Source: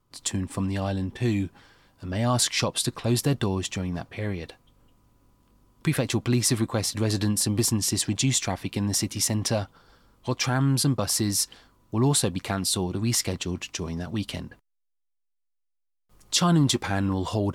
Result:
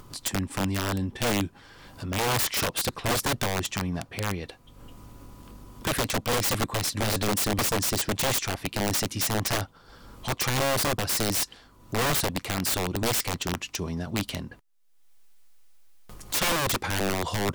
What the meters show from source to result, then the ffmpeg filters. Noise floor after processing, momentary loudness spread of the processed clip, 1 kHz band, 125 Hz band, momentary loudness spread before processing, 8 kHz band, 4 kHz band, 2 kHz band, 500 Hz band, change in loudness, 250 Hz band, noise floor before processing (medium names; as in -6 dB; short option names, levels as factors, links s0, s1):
-55 dBFS, 8 LU, +3.5 dB, -5.5 dB, 10 LU, -2.5 dB, -0.5 dB, +4.5 dB, +0.5 dB, -1.5 dB, -5.5 dB, -75 dBFS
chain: -af "acompressor=mode=upward:threshold=0.0282:ratio=2.5,aeval=exprs='(mod(9.44*val(0)+1,2)-1)/9.44':c=same"